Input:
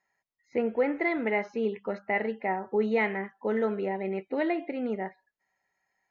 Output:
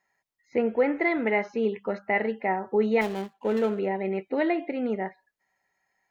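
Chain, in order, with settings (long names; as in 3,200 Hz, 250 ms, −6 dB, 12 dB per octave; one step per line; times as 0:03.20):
0:03.01–0:03.79: running median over 25 samples
level +3 dB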